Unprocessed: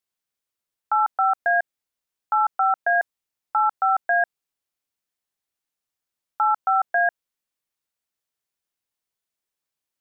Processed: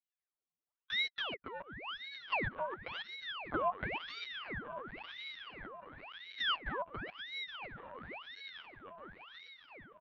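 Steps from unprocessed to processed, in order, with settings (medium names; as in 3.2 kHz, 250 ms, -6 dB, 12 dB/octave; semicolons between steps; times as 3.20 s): local Wiener filter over 15 samples; dynamic bell 550 Hz, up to -7 dB, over -35 dBFS, Q 0.89; comb 6.8 ms, depth 51%; harmonic-percussive split harmonic -7 dB; vowel filter u; overdrive pedal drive 15 dB, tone 1.4 kHz, clips at -30 dBFS; painted sound rise, 3.52–3.73 s, 420–1100 Hz -45 dBFS; flange 1 Hz, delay 1.2 ms, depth 3.5 ms, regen +52%; on a send: echo that smears into a reverb 963 ms, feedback 63%, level -7.5 dB; on the sum: LPC vocoder at 8 kHz pitch kept; ring modulator with a swept carrier 1.6 kHz, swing 90%, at 0.95 Hz; trim +10 dB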